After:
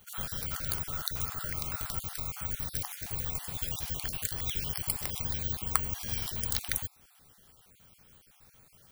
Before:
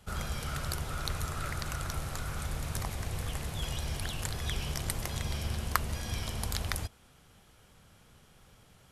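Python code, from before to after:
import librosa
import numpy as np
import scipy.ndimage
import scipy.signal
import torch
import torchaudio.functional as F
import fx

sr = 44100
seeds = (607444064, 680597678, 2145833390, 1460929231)

y = fx.spec_dropout(x, sr, seeds[0], share_pct=32)
y = fx.high_shelf(y, sr, hz=3600.0, db=7.0)
y = (np.kron(y[::2], np.eye(2)[0]) * 2)[:len(y)]
y = y * librosa.db_to_amplitude(-3.0)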